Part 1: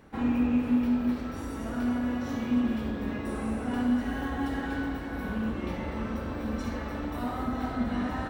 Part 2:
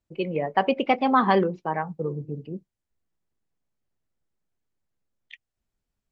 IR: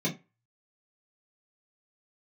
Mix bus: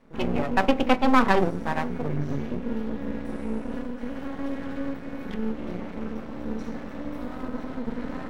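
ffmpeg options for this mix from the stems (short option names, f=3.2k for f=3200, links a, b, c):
-filter_complex "[0:a]highpass=f=150:w=0.5412,highpass=f=150:w=1.3066,highshelf=f=12k:g=-6,alimiter=limit=-23.5dB:level=0:latency=1:release=42,volume=-2.5dB,asplit=2[a][b];[b]volume=-10.5dB[c];[1:a]volume=3dB,asplit=2[d][e];[e]volume=-19dB[f];[2:a]atrim=start_sample=2205[g];[c][f]amix=inputs=2:normalize=0[h];[h][g]afir=irnorm=-1:irlink=0[i];[a][d][i]amix=inputs=3:normalize=0,aeval=exprs='max(val(0),0)':c=same"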